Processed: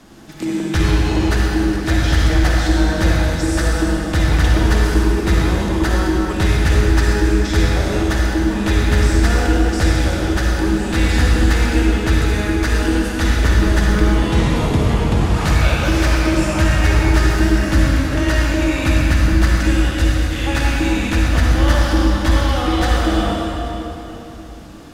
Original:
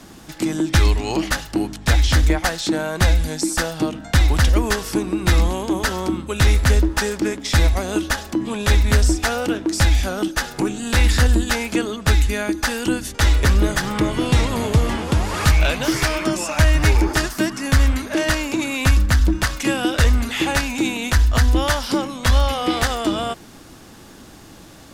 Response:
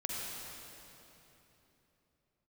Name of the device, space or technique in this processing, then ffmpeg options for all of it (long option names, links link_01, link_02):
swimming-pool hall: -filter_complex "[0:a]asettb=1/sr,asplit=3[link_01][link_02][link_03];[link_01]atrim=end=19.714[link_04];[link_02]atrim=start=19.71:end=20.44,asetpts=PTS-STARTPTS,afade=type=in:duration=0.004:curve=qsin,afade=type=out:start_time=0.726:duration=0.004:curve=qsin,equalizer=frequency=570:width=0.33:gain=-8[link_05];[link_03]atrim=start=20.436[link_06];[link_04][link_05]acrossfade=duration=0.004:curve1=hsin:curve2=qsin[link_07];[link_07][link_06]acrossfade=duration=0.004:curve1=qsin:curve2=hsin[link_08];[1:a]atrim=start_sample=2205[link_09];[link_08][link_09]afir=irnorm=-1:irlink=0,highshelf=frequency=5500:gain=-6.5,volume=-1dB"